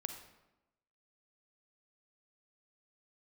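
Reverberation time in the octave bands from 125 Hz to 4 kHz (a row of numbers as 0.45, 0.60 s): 0.95, 1.1, 1.0, 0.95, 0.80, 0.65 s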